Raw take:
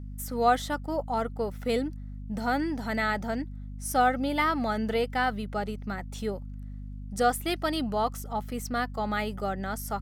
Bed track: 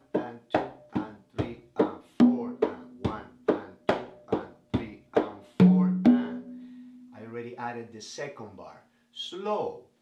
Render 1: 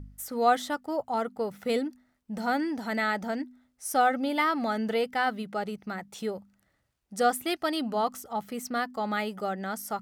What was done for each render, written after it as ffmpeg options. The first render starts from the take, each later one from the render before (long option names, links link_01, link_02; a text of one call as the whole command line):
ffmpeg -i in.wav -af "bandreject=frequency=50:width_type=h:width=4,bandreject=frequency=100:width_type=h:width=4,bandreject=frequency=150:width_type=h:width=4,bandreject=frequency=200:width_type=h:width=4,bandreject=frequency=250:width_type=h:width=4" out.wav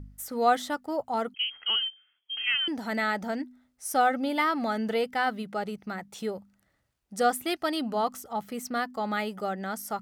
ffmpeg -i in.wav -filter_complex "[0:a]asettb=1/sr,asplit=3[link_01][link_02][link_03];[link_01]atrim=end=1.344[link_04];[link_02]atrim=start=1.34:end=2.68,asetpts=PTS-STARTPTS,afade=type=in:duration=0.004:curve=qsin,afade=type=out:start_time=1.336:duration=0.004:curve=qsin,lowpass=frequency=2900:width_type=q:width=0.5098,lowpass=frequency=2900:width_type=q:width=0.6013,lowpass=frequency=2900:width_type=q:width=0.9,lowpass=frequency=2900:width_type=q:width=2.563,afreqshift=-3400[link_05];[link_03]atrim=start=2.676[link_06];[link_04][link_05]acrossfade=duration=0.004:curve1=hsin:curve2=qsin[link_07];[link_07][link_06]acrossfade=duration=0.004:curve1=qsin:curve2=hsin" out.wav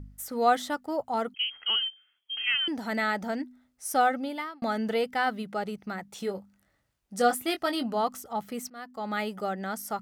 ffmpeg -i in.wav -filter_complex "[0:a]asettb=1/sr,asplit=3[link_01][link_02][link_03];[link_01]atrim=end=6.184[link_04];[link_02]atrim=start=6.18:end=7.86,asetpts=PTS-STARTPTS,afade=type=in:duration=0.004:curve=qsin,afade=type=out:start_time=1.676:duration=0.004:curve=qsin,asplit=2[link_05][link_06];[link_06]adelay=21,volume=-8dB[link_07];[link_05][link_07]amix=inputs=2:normalize=0,atrim=end_sample=74088[link_08];[link_03]atrim=start=7.856[link_09];[link_04][link_08]acrossfade=duration=0.004:curve1=hsin:curve2=qsin[link_10];[link_10][link_09]acrossfade=duration=0.004:curve1=qsin:curve2=hsin,asplit=3[link_11][link_12][link_13];[link_11]atrim=end=4.62,asetpts=PTS-STARTPTS,afade=type=out:start_time=4.04:duration=0.58[link_14];[link_12]atrim=start=4.62:end=8.7,asetpts=PTS-STARTPTS,afade=type=in:duration=0.004:curve=hsin,afade=type=out:start_time=4.076:duration=0.004:curve=hsin:silence=0.0668344[link_15];[link_13]atrim=start=8.7,asetpts=PTS-STARTPTS,afade=type=in:duration=0.53:silence=0.0668344[link_16];[link_14][link_15][link_16]concat=n=3:v=0:a=1" out.wav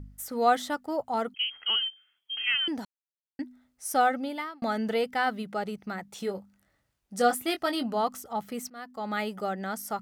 ffmpeg -i in.wav -filter_complex "[0:a]asplit=3[link_01][link_02][link_03];[link_01]atrim=end=2.85,asetpts=PTS-STARTPTS,afade=type=out:start_time=2.846:duration=0.004:curve=hsin[link_04];[link_02]atrim=start=2.85:end=3.39,asetpts=PTS-STARTPTS,volume=0[link_05];[link_03]atrim=start=3.39,asetpts=PTS-STARTPTS,afade=type=in:duration=0.004:curve=hsin[link_06];[link_04][link_05][link_06]concat=n=3:v=0:a=1" out.wav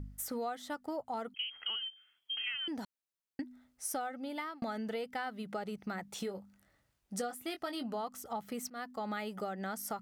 ffmpeg -i in.wav -af "acompressor=threshold=-35dB:ratio=12" out.wav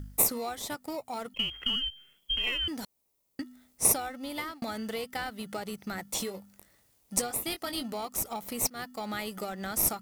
ffmpeg -i in.wav -filter_complex "[0:a]crystalizer=i=4.5:c=0,asplit=2[link_01][link_02];[link_02]acrusher=samples=28:mix=1:aa=0.000001,volume=-10.5dB[link_03];[link_01][link_03]amix=inputs=2:normalize=0" out.wav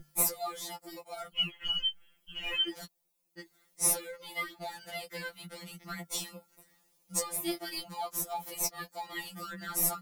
ffmpeg -i in.wav -af "afftfilt=real='re*2.83*eq(mod(b,8),0)':imag='im*2.83*eq(mod(b,8),0)':win_size=2048:overlap=0.75" out.wav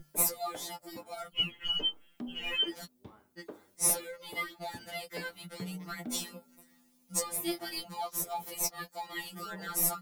ffmpeg -i in.wav -i bed.wav -filter_complex "[1:a]volume=-22dB[link_01];[0:a][link_01]amix=inputs=2:normalize=0" out.wav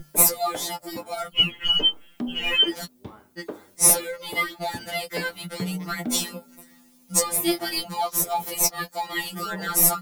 ffmpeg -i in.wav -af "volume=11dB" out.wav